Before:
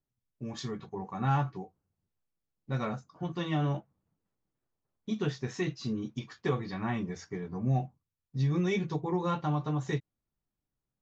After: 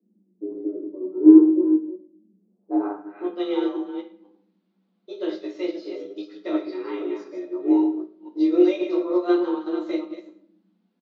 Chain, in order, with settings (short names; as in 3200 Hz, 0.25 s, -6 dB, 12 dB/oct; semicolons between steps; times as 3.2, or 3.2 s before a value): reverse delay 0.251 s, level -7 dB; bell 120 Hz +10.5 dB 3 oct; added noise brown -59 dBFS; frequency shift +180 Hz; low-pass sweep 360 Hz -> 4000 Hz, 2.37–3.47; on a send: echo 0.111 s -16.5 dB; on the sum: shoebox room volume 82 m³, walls mixed, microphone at 0.8 m; upward expander 1.5:1, over -32 dBFS; gain -1 dB